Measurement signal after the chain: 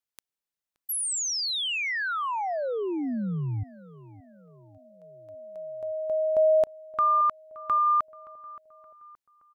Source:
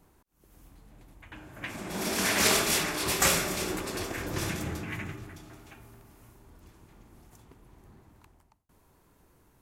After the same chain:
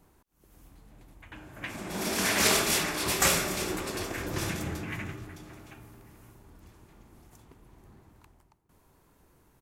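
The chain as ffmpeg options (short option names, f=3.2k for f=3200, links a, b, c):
-filter_complex "[0:a]asplit=2[a][b];[b]adelay=572,lowpass=f=2.3k:p=1,volume=-19.5dB,asplit=2[c][d];[d]adelay=572,lowpass=f=2.3k:p=1,volume=0.53,asplit=2[e][f];[f]adelay=572,lowpass=f=2.3k:p=1,volume=0.53,asplit=2[g][h];[h]adelay=572,lowpass=f=2.3k:p=1,volume=0.53[i];[a][c][e][g][i]amix=inputs=5:normalize=0"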